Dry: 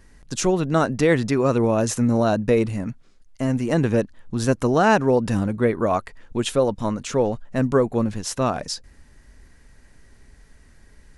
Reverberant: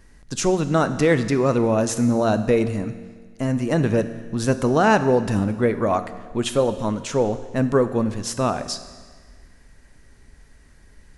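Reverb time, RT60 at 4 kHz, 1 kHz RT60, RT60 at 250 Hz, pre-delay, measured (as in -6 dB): 1.6 s, 1.5 s, 1.6 s, 1.6 s, 11 ms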